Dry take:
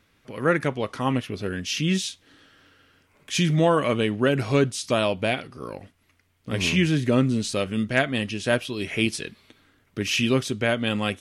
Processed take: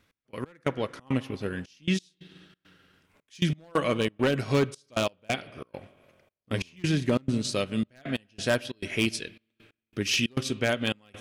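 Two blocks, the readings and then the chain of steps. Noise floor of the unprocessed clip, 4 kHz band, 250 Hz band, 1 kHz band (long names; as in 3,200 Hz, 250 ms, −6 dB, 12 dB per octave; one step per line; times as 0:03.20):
−65 dBFS, −4.0 dB, −5.0 dB, −6.5 dB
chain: dynamic equaliser 4,900 Hz, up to +5 dB, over −44 dBFS, Q 1.6
spring reverb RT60 2 s, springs 45/49 ms, chirp 80 ms, DRR 15 dB
wave folding −12.5 dBFS
gate pattern "x..x..xxx.xxxx" 136 BPM −24 dB
transient designer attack +2 dB, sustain −5 dB
level −3.5 dB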